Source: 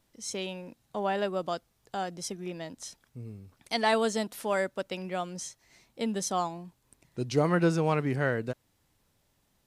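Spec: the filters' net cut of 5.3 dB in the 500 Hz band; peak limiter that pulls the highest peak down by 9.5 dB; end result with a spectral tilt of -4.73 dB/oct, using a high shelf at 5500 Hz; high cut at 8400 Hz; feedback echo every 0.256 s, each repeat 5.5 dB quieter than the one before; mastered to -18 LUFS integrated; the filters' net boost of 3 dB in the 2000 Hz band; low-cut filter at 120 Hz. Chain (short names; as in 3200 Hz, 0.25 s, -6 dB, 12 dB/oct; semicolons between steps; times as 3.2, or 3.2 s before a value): HPF 120 Hz; LPF 8400 Hz; bell 500 Hz -7 dB; bell 2000 Hz +5 dB; high shelf 5500 Hz -6.5 dB; limiter -21.5 dBFS; feedback echo 0.256 s, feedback 53%, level -5.5 dB; gain +17 dB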